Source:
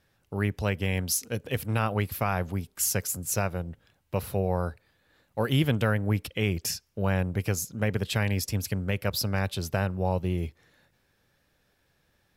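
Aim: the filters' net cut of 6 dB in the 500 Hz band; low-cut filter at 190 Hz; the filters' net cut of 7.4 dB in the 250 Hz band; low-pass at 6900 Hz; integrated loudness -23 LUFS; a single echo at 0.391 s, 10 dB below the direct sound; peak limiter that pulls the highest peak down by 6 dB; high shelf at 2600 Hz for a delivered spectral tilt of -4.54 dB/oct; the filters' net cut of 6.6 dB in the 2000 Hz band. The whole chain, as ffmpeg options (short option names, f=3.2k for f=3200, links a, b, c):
-af "highpass=190,lowpass=6.9k,equalizer=f=250:t=o:g=-6,equalizer=f=500:t=o:g=-5,equalizer=f=2k:t=o:g=-5.5,highshelf=f=2.6k:g=-6.5,alimiter=limit=-24dB:level=0:latency=1,aecho=1:1:391:0.316,volume=15.5dB"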